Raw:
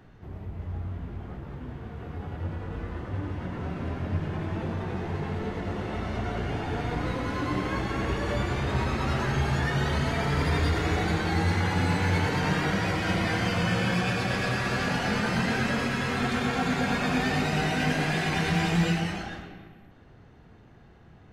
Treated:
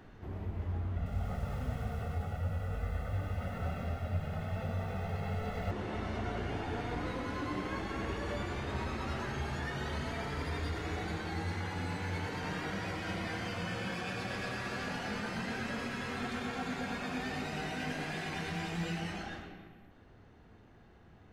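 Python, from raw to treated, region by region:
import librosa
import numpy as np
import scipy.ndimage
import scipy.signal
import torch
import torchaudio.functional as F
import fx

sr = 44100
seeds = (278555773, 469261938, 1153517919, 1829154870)

y = fx.chain(x, sr, fx.comb(ms=1.5, depth=0.96),
    fx.echo_crushed(ms=97, feedback_pct=80, bits=8, wet_db=-12.5), at=(0.96, 5.71))
y = fx.peak_eq(y, sr, hz=140.0, db=-5.5, octaves=0.35)
y = fx.hum_notches(y, sr, base_hz=60, count=3)
y = fx.rider(y, sr, range_db=10, speed_s=0.5)
y = y * librosa.db_to_amplitude(-9.0)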